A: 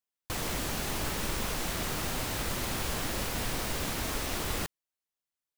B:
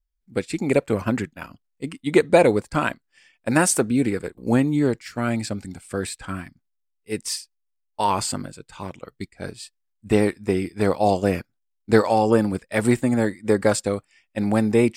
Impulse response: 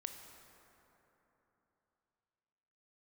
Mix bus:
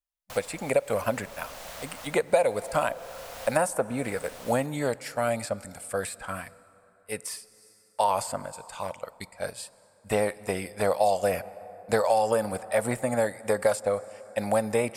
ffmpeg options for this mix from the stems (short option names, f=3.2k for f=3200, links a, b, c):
-filter_complex "[0:a]volume=-7dB,asplit=2[a][b];[b]volume=-19.5dB[c];[1:a]agate=range=-15dB:threshold=-51dB:ratio=16:detection=peak,equalizer=f=11k:t=o:w=0.7:g=14.5,volume=-2dB,asplit=3[d][e][f];[e]volume=-10dB[g];[f]apad=whole_len=246060[h];[a][h]sidechaincompress=threshold=-28dB:ratio=8:attack=25:release=803[i];[2:a]atrim=start_sample=2205[j];[c][g]amix=inputs=2:normalize=0[k];[k][j]afir=irnorm=-1:irlink=0[l];[i][d][l]amix=inputs=3:normalize=0,lowshelf=f=450:t=q:w=3:g=-8,acrossover=split=990|2200[m][n][o];[m]acompressor=threshold=-21dB:ratio=4[p];[n]acompressor=threshold=-36dB:ratio=4[q];[o]acompressor=threshold=-38dB:ratio=4[r];[p][q][r]amix=inputs=3:normalize=0"